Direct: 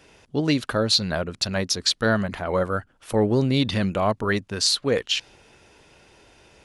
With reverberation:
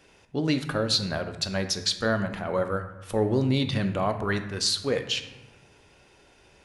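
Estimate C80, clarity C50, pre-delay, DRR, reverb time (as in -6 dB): 12.0 dB, 10.0 dB, 3 ms, 7.0 dB, 1.0 s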